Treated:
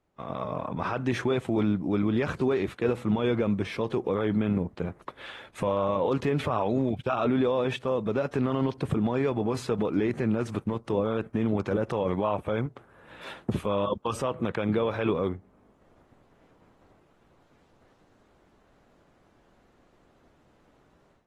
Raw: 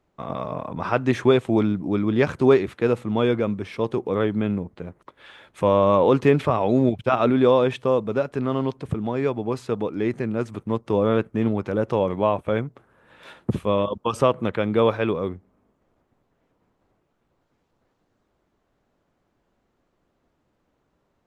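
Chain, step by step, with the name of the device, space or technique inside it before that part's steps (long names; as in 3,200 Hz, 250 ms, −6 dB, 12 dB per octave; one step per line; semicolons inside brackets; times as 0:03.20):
low-bitrate web radio (automatic gain control gain up to 13.5 dB; brickwall limiter −11.5 dBFS, peak gain reduction 10.5 dB; level −5.5 dB; AAC 32 kbit/s 44,100 Hz)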